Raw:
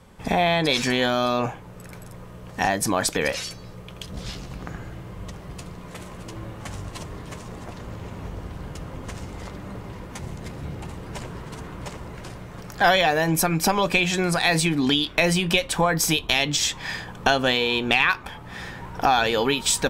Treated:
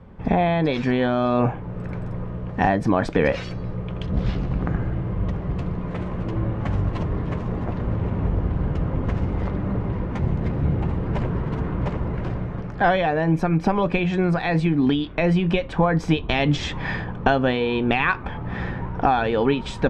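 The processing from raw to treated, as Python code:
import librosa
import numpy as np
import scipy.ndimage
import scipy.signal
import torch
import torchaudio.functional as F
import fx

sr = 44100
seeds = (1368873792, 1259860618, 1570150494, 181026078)

y = scipy.signal.sosfilt(scipy.signal.butter(2, 2200.0, 'lowpass', fs=sr, output='sos'), x)
y = fx.low_shelf(y, sr, hz=500.0, db=9.0)
y = fx.rider(y, sr, range_db=4, speed_s=0.5)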